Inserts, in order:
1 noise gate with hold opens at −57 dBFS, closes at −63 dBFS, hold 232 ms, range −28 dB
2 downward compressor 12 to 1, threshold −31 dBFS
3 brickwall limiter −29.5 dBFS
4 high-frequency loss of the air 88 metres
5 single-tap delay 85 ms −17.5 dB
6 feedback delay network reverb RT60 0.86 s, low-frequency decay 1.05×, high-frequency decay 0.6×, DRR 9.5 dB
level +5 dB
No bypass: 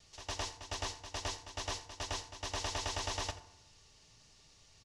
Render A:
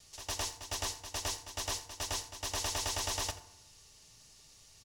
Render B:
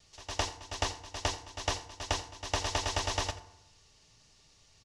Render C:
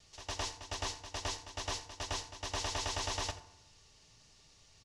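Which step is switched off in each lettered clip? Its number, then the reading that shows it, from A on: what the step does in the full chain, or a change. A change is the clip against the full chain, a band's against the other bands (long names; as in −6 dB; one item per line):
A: 4, 8 kHz band +6.5 dB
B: 3, change in crest factor +4.5 dB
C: 2, average gain reduction 3.0 dB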